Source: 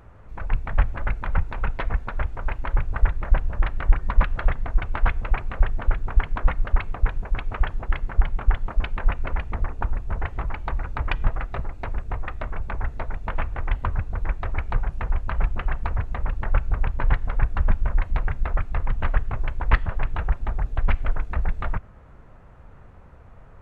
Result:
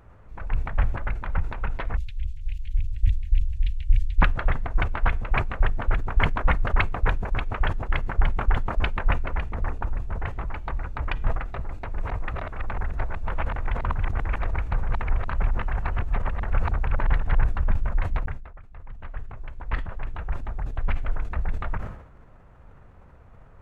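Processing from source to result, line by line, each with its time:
1.97–4.22 inverse Chebyshev band-stop 200–1300 Hz, stop band 50 dB
11.49–17.44 reverse delay 0.478 s, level -1 dB
18.26–21.29 fade in linear
whole clip: sustainer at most 81 dB/s; gain -3.5 dB

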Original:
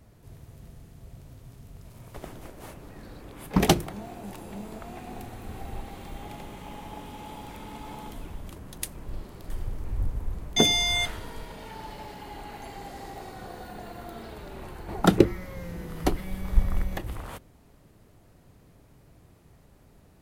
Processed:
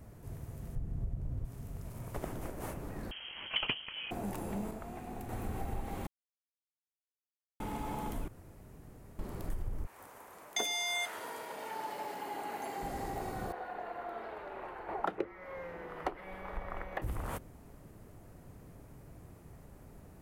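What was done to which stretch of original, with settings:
0.75–1.45 tilt -3 dB/oct
3.11–4.11 inverted band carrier 3200 Hz
4.71–5.29 gain -6.5 dB
6.07–7.6 mute
8.28–9.19 room tone
9.85–12.81 HPF 930 Hz -> 280 Hz
13.52–17.02 three-band isolator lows -22 dB, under 420 Hz, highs -23 dB, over 3200 Hz
whole clip: bell 3800 Hz -8 dB 1.3 oct; compressor 4:1, threshold -36 dBFS; gain +3 dB

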